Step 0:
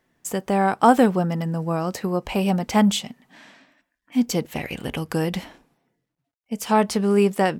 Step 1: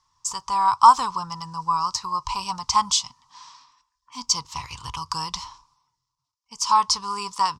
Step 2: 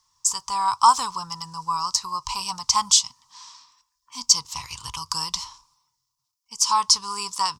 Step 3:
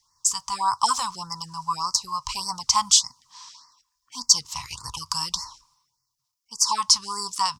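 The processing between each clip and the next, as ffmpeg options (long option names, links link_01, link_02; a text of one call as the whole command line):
ffmpeg -i in.wav -af "firequalizer=gain_entry='entry(100,0);entry(200,-25);entry(300,-24);entry(650,-26);entry(1000,15);entry(1600,-15);entry(5200,13);entry(13000,-21)':delay=0.05:min_phase=1,volume=1.5dB" out.wav
ffmpeg -i in.wav -af "crystalizer=i=3:c=0,volume=-4dB" out.wav
ffmpeg -i in.wav -af "afftfilt=real='re*(1-between(b*sr/1024,350*pow(3100/350,0.5+0.5*sin(2*PI*1.7*pts/sr))/1.41,350*pow(3100/350,0.5+0.5*sin(2*PI*1.7*pts/sr))*1.41))':imag='im*(1-between(b*sr/1024,350*pow(3100/350,0.5+0.5*sin(2*PI*1.7*pts/sr))/1.41,350*pow(3100/350,0.5+0.5*sin(2*PI*1.7*pts/sr))*1.41))':win_size=1024:overlap=0.75" out.wav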